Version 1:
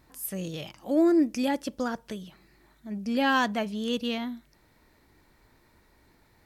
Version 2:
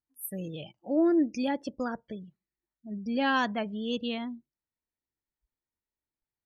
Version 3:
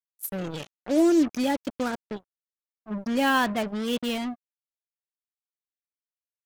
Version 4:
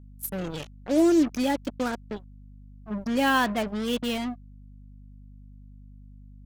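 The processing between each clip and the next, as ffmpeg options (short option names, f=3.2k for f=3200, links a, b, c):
-af "afftdn=nr=34:nf=-40,volume=-2.5dB"
-af "acrusher=bits=5:mix=0:aa=0.5,volume=4dB"
-af "aeval=exprs='val(0)+0.00501*(sin(2*PI*50*n/s)+sin(2*PI*2*50*n/s)/2+sin(2*PI*3*50*n/s)/3+sin(2*PI*4*50*n/s)/4+sin(2*PI*5*50*n/s)/5)':c=same"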